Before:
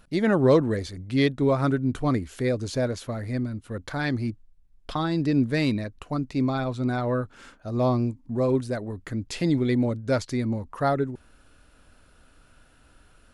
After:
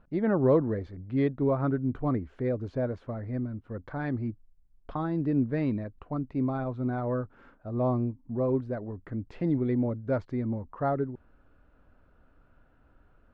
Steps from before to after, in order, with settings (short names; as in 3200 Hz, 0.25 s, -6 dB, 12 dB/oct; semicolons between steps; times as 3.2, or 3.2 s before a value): LPF 1300 Hz 12 dB/oct; gain -4 dB